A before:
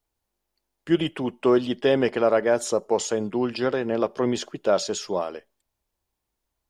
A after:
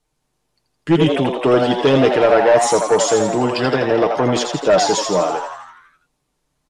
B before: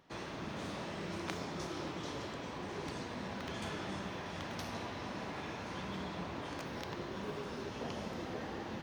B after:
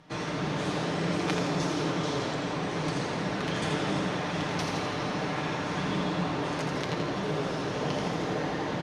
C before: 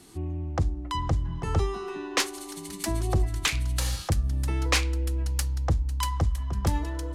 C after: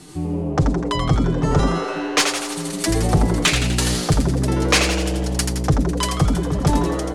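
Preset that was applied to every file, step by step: low-pass 11 kHz 24 dB/octave; peaking EQ 160 Hz +4.5 dB 0.61 oct; comb 6.6 ms, depth 59%; in parallel at -9.5 dB: sine folder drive 9 dB, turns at -5.5 dBFS; on the sum: frequency-shifting echo 83 ms, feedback 59%, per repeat +120 Hz, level -6 dB

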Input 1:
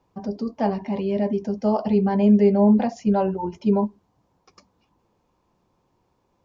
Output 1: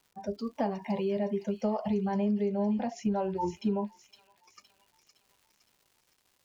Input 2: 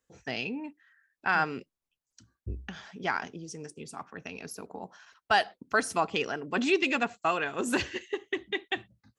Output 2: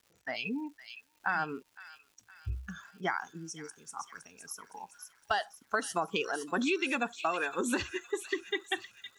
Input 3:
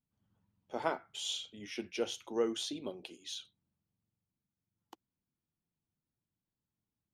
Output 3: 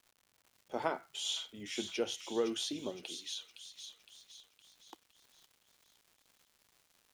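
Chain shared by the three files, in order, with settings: spectral noise reduction 17 dB; crackle 260 per s -54 dBFS; compression 6:1, threshold -28 dBFS; feedback echo behind a high-pass 513 ms, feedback 49%, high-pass 3 kHz, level -6 dB; trim +1 dB

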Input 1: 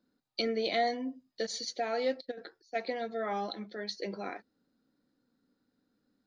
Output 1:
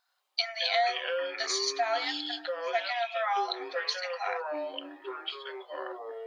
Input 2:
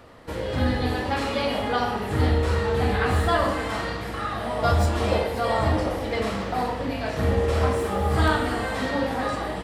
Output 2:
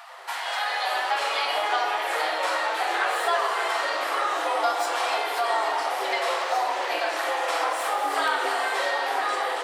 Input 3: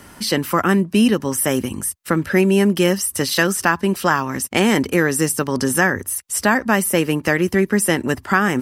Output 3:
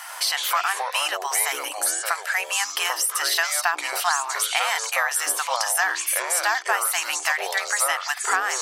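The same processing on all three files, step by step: brick-wall FIR high-pass 650 Hz; compression 2.5:1, threshold -34 dBFS; ever faster or slower copies 88 ms, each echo -5 st, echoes 3, each echo -6 dB; trim +8.5 dB

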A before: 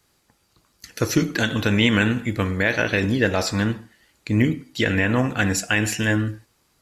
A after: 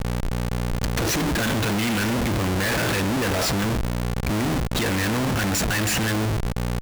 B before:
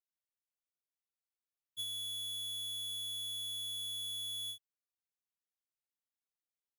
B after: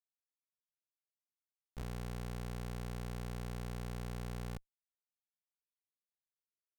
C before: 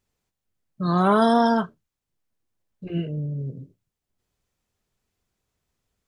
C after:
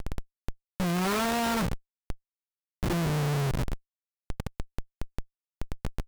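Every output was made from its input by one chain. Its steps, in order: mains buzz 60 Hz, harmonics 4, -41 dBFS -3 dB/octave; Schmitt trigger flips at -34.5 dBFS

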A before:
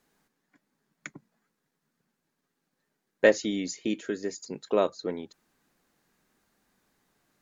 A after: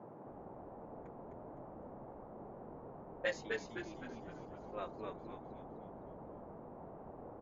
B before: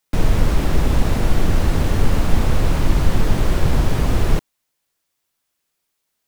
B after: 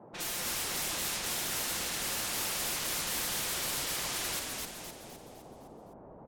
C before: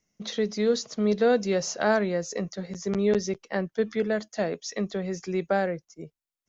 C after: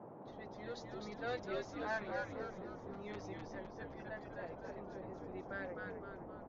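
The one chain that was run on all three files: level-controlled noise filter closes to 520 Hz, open at -9.5 dBFS; differentiator; comb 5.7 ms, depth 89%; band noise 120–860 Hz -53 dBFS; frequency-shifting echo 256 ms, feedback 48%, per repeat -94 Hz, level -3 dB

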